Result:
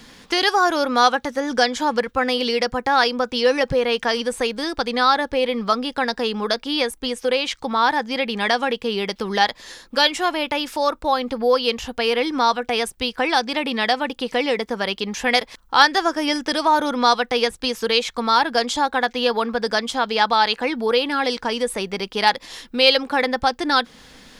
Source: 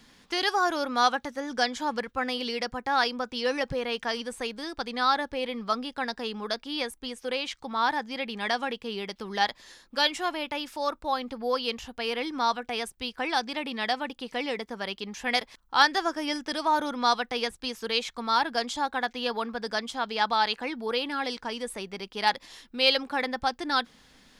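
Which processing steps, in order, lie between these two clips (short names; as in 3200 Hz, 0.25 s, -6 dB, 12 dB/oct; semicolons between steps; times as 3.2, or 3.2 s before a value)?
bell 490 Hz +4 dB 0.26 oct; in parallel at +0.5 dB: compressor, threshold -32 dBFS, peak gain reduction 16 dB; on the sum: gain +5 dB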